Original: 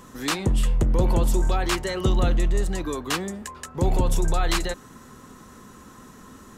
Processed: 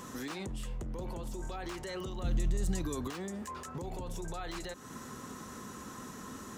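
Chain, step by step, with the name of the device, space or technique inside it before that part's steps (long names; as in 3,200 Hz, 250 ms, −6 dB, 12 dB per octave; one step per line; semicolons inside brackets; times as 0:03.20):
broadcast voice chain (high-pass filter 87 Hz 6 dB per octave; de-essing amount 65%; downward compressor 4 to 1, threshold −36 dBFS, peak gain reduction 15 dB; parametric band 6,000 Hz +3 dB 0.6 octaves; brickwall limiter −32.5 dBFS, peak gain reduction 10 dB)
0:02.24–0:03.08: bass and treble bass +11 dB, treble +8 dB
level +1 dB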